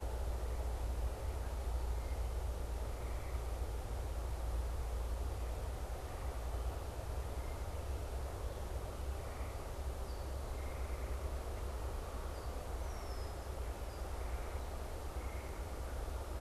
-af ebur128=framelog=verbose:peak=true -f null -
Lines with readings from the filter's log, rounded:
Integrated loudness:
  I:         -43.7 LUFS
  Threshold: -53.7 LUFS
Loudness range:
  LRA:         2.5 LU
  Threshold: -63.8 LUFS
  LRA low:   -45.0 LUFS
  LRA high:  -42.5 LUFS
True peak:
  Peak:      -28.1 dBFS